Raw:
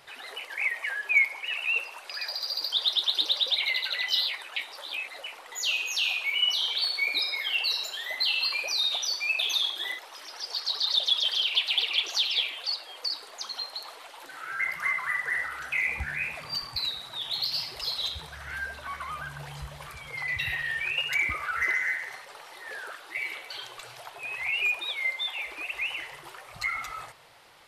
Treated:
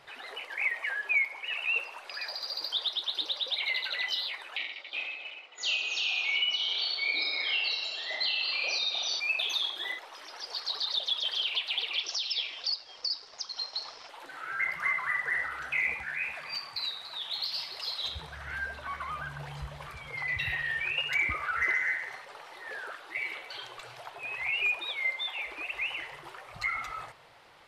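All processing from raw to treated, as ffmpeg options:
ffmpeg -i in.wav -filter_complex "[0:a]asettb=1/sr,asplit=3[link_01][link_02][link_03];[link_01]atrim=end=4.574[link_04];[link_02]atrim=start=4.57:end=9.2,asetpts=PTS-STARTPTS,afade=type=in:duration=0.004:curve=qsin,afade=type=out:start_time=4.626:duration=0.004:curve=qsin,agate=range=-13dB:threshold=-37dB:ratio=16:release=100:detection=peak,highpass=160,equalizer=frequency=520:width_type=q:width=4:gain=-3,equalizer=frequency=1000:width_type=q:width=4:gain=-6,equalizer=frequency=1700:width_type=q:width=4:gain=-6,lowpass=frequency=6200:width=0.5412,lowpass=frequency=6200:width=1.3066,aecho=1:1:30|69|119.7|185.6|271.3|382.7:0.794|0.631|0.501|0.398|0.316|0.251,atrim=end_sample=204183[link_05];[link_03]atrim=start=9.196[link_06];[link_04][link_05]acrossfade=duration=0.004:curve1=hsin:curve2=qsin[link_07];[link_07][link_06]acrossfade=duration=0.004:curve1=qsin:curve2=hsin,asettb=1/sr,asplit=3[link_08][link_09][link_10];[link_08]atrim=end=11.984[link_11];[link_09]atrim=start=11.98:end=14.09,asetpts=PTS-STARTPTS,afade=type=in:duration=0.004:curve=qsin,afade=type=out:start_time=2.106:duration=0.004:curve=qsin,aeval=exprs='sgn(val(0))*max(abs(val(0))-0.00237,0)':channel_layout=same,lowpass=frequency=5300:width_type=q:width=11[link_12];[link_10]atrim=start=14.086[link_13];[link_11][link_12]acrossfade=duration=0.004:curve1=hsin:curve2=qsin[link_14];[link_14][link_13]acrossfade=duration=0.004:curve1=qsin:curve2=hsin,asettb=1/sr,asplit=3[link_15][link_16][link_17];[link_15]atrim=end=15.944[link_18];[link_16]atrim=start=15.94:end=18.05,asetpts=PTS-STARTPTS,afade=type=in:duration=0.004:curve=qsin,afade=type=out:start_time=2.106:duration=0.004:curve=qsin,highpass=frequency=740:poles=1,aecho=1:1:287:0.282,atrim=end_sample=93051[link_19];[link_17]atrim=start=18.046[link_20];[link_18][link_19]acrossfade=duration=0.004:curve1=hsin:curve2=qsin[link_21];[link_21][link_20]acrossfade=duration=0.004:curve1=qsin:curve2=hsin,alimiter=limit=-17dB:level=0:latency=1:release=411,lowpass=frequency=3300:poles=1" out.wav

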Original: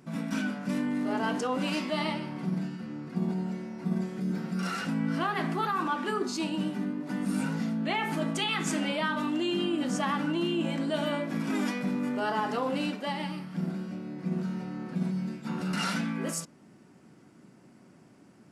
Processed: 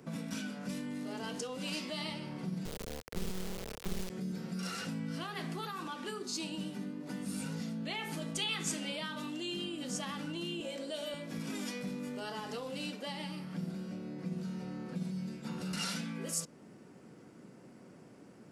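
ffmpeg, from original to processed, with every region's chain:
ffmpeg -i in.wav -filter_complex "[0:a]asettb=1/sr,asplit=3[link_01][link_02][link_03];[link_01]atrim=end=2.654[link_04];[link_02]atrim=start=2.65:end=4.1,asetpts=PTS-STARTPTS,afade=type=in:duration=0.004:curve=qsin,afade=type=out:start_time=1.446:duration=0.004:curve=qsin,bandreject=frequency=3700:width=24,acrusher=bits=3:dc=4:mix=0:aa=0.000001[link_05];[link_03]atrim=start=4.096[link_06];[link_04][link_05]acrossfade=duration=0.004:curve1=hsin:curve2=qsin[link_07];[link_07][link_06]acrossfade=duration=0.004:curve1=qsin:curve2=hsin,asettb=1/sr,asplit=3[link_08][link_09][link_10];[link_08]atrim=end=10.604[link_11];[link_09]atrim=start=10.6:end=11.14,asetpts=PTS-STARTPTS,afade=type=in:duration=0.004:curve=qsin,afade=type=out:start_time=0.536:duration=0.004:curve=qsin,highpass=frequency=250:width=0.5412,highpass=frequency=250:width=1.3066,equalizer=frequency=560:width_type=o:width=0.22:gain=12[link_12];[link_10]atrim=start=11.136[link_13];[link_11][link_12]acrossfade=duration=0.004:curve1=hsin:curve2=qsin[link_14];[link_14][link_13]acrossfade=duration=0.004:curve1=qsin:curve2=hsin,equalizer=frequency=480:width=3.4:gain=8,acrossover=split=130|3000[link_15][link_16][link_17];[link_16]acompressor=threshold=-41dB:ratio=6[link_18];[link_15][link_18][link_17]amix=inputs=3:normalize=0" out.wav

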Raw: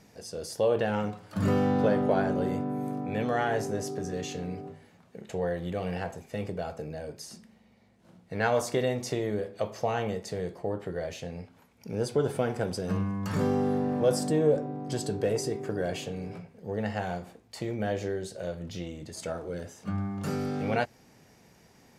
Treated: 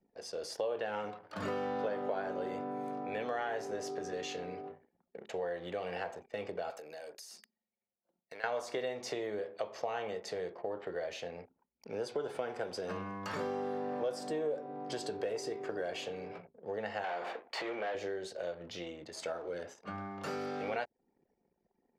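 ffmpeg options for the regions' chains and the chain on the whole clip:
ffmpeg -i in.wav -filter_complex "[0:a]asettb=1/sr,asplit=3[link_01][link_02][link_03];[link_01]atrim=end=6.704[link_04];[link_02]atrim=start=6.7:end=8.44,asetpts=PTS-STARTPTS,afade=type=in:duration=0.004:curve=qsin,afade=type=out:start_time=1.736:duration=0.004:curve=qsin,aemphasis=mode=production:type=riaa,bandreject=frequency=207.1:width_type=h:width=4,bandreject=frequency=414.2:width_type=h:width=4,bandreject=frequency=621.3:width_type=h:width=4,bandreject=frequency=828.4:width_type=h:width=4,bandreject=frequency=1035.5:width_type=h:width=4,bandreject=frequency=1242.6:width_type=h:width=4,bandreject=frequency=1449.7:width_type=h:width=4,bandreject=frequency=1656.8:width_type=h:width=4,bandreject=frequency=1863.9:width_type=h:width=4,bandreject=frequency=2071:width_type=h:width=4,bandreject=frequency=2278.1:width_type=h:width=4,bandreject=frequency=2485.2:width_type=h:width=4,bandreject=frequency=2692.3:width_type=h:width=4,bandreject=frequency=2899.4:width_type=h:width=4,bandreject=frequency=3106.5:width_type=h:width=4,bandreject=frequency=3313.6:width_type=h:width=4,bandreject=frequency=3520.7:width_type=h:width=4,bandreject=frequency=3727.8:width_type=h:width=4,bandreject=frequency=3934.9:width_type=h:width=4,bandreject=frequency=4142:width_type=h:width=4,bandreject=frequency=4349.1:width_type=h:width=4,bandreject=frequency=4556.2:width_type=h:width=4,bandreject=frequency=4763.3:width_type=h:width=4,bandreject=frequency=4970.4:width_type=h:width=4,bandreject=frequency=5177.5:width_type=h:width=4,bandreject=frequency=5384.6:width_type=h:width=4,bandreject=frequency=5591.7:width_type=h:width=4,bandreject=frequency=5798.8:width_type=h:width=4,bandreject=frequency=6005.9:width_type=h:width=4,bandreject=frequency=6213:width_type=h:width=4,acompressor=threshold=-41dB:ratio=16:attack=3.2:release=140:knee=1:detection=peak[link_05];[link_03]atrim=start=8.436[link_06];[link_04][link_05]acrossfade=duration=0.004:curve1=hsin:curve2=qsin[link_07];[link_07][link_06]acrossfade=duration=0.004:curve1=qsin:curve2=hsin,asettb=1/sr,asplit=3[link_08][link_09][link_10];[link_08]atrim=end=17.044[link_11];[link_09]atrim=start=17.04:end=17.95,asetpts=PTS-STARTPTS,afade=type=in:duration=0.004:curve=qsin,afade=type=out:start_time=0.906:duration=0.004:curve=qsin,acompressor=threshold=-39dB:ratio=2.5:attack=3.2:release=140:knee=1:detection=peak,asplit=2[link_12][link_13];[link_13]highpass=frequency=720:poles=1,volume=24dB,asoftclip=type=tanh:threshold=-23.5dB[link_14];[link_12][link_14]amix=inputs=2:normalize=0,lowpass=frequency=4900:poles=1,volume=-6dB,bass=frequency=250:gain=-5,treble=frequency=4000:gain=-8[link_15];[link_10]atrim=start=17.946[link_16];[link_11][link_15]acrossfade=duration=0.004:curve1=hsin:curve2=qsin[link_17];[link_17][link_16]acrossfade=duration=0.004:curve1=qsin:curve2=hsin,anlmdn=0.00398,acrossover=split=350 5500:gain=0.126 1 0.251[link_18][link_19][link_20];[link_18][link_19][link_20]amix=inputs=3:normalize=0,acompressor=threshold=-36dB:ratio=3,volume=1dB" out.wav

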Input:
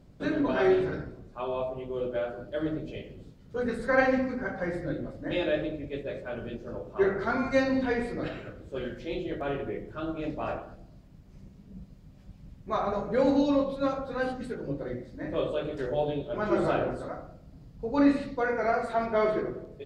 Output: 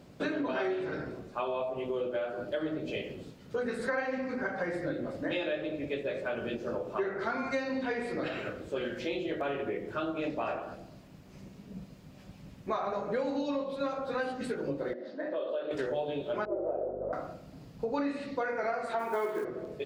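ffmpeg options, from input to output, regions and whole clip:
ffmpeg -i in.wav -filter_complex "[0:a]asettb=1/sr,asplit=3[link_01][link_02][link_03];[link_01]atrim=end=14.934[link_04];[link_02]atrim=start=14.93:end=15.71,asetpts=PTS-STARTPTS,afade=type=in:duration=0.004:curve=qsin,afade=type=out:start_time=0.776:duration=0.004:curve=qsin,acompressor=threshold=-43dB:ratio=2.5:attack=3.2:release=140:knee=1:detection=peak,highpass=frequency=230:width=0.5412,highpass=frequency=230:width=1.3066,equalizer=frequency=610:width_type=q:width=4:gain=8,equalizer=frequency=1600:width_type=q:width=4:gain=4,equalizer=frequency=2300:width_type=q:width=4:gain=-9,lowpass=frequency=4700:width=0.5412,lowpass=frequency=4700:width=1.3066[link_05];[link_03]atrim=start=15.706[link_06];[link_04][link_05]acrossfade=duration=0.004:curve1=hsin:curve2=qsin[link_07];[link_07][link_06]acrossfade=duration=0.004:curve1=qsin:curve2=hsin,asettb=1/sr,asplit=3[link_08][link_09][link_10];[link_08]atrim=end=16.454[link_11];[link_09]atrim=start=16.45:end=17.13,asetpts=PTS-STARTPTS,afade=type=in:duration=0.004:curve=qsin,afade=type=out:start_time=0.676:duration=0.004:curve=qsin,asuperpass=centerf=500:order=4:qfactor=1.6,aeval=exprs='val(0)+0.00891*(sin(2*PI*50*n/s)+sin(2*PI*2*50*n/s)/2+sin(2*PI*3*50*n/s)/3+sin(2*PI*4*50*n/s)/4+sin(2*PI*5*50*n/s)/5)':channel_layout=same[link_12];[link_10]atrim=start=17.126[link_13];[link_11][link_12]acrossfade=duration=0.004:curve1=hsin:curve2=qsin[link_14];[link_14][link_13]acrossfade=duration=0.004:curve1=qsin:curve2=hsin,asettb=1/sr,asplit=3[link_15][link_16][link_17];[link_15]atrim=end=18.994[link_18];[link_16]atrim=start=18.99:end=19.45,asetpts=PTS-STARTPTS,afade=type=in:duration=0.004:curve=qsin,afade=type=out:start_time=0.456:duration=0.004:curve=qsin,highpass=150,equalizer=frequency=410:width_type=q:width=4:gain=6,equalizer=frequency=630:width_type=q:width=4:gain=-5,equalizer=frequency=910:width_type=q:width=4:gain=10,equalizer=frequency=1500:width_type=q:width=4:gain=3,lowpass=frequency=3900:width=0.5412,lowpass=frequency=3900:width=1.3066,acrusher=bits=7:mode=log:mix=0:aa=0.000001,asplit=2[link_19][link_20];[link_20]adelay=19,volume=-11dB[link_21];[link_19][link_21]amix=inputs=2:normalize=0,atrim=end_sample=20286[link_22];[link_17]atrim=start=19.446[link_23];[link_18][link_22]acrossfade=duration=0.004:curve1=hsin:curve2=qsin[link_24];[link_24][link_23]acrossfade=duration=0.004:curve1=qsin:curve2=hsin,highpass=frequency=330:poles=1,equalizer=frequency=2600:width_type=o:width=0.27:gain=3,acompressor=threshold=-39dB:ratio=6,volume=8.5dB" out.wav

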